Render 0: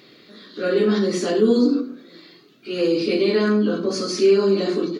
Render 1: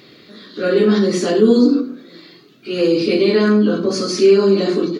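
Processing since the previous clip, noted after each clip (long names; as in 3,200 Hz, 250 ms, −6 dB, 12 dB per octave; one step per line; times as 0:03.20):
parametric band 86 Hz +6 dB 1.6 octaves
level +4 dB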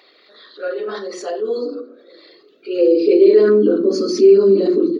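spectral envelope exaggerated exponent 1.5
high-pass filter sweep 790 Hz → 260 Hz, 0:01.37–0:04.11
level −2.5 dB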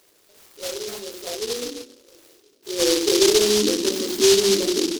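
short delay modulated by noise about 4,500 Hz, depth 0.22 ms
level −6.5 dB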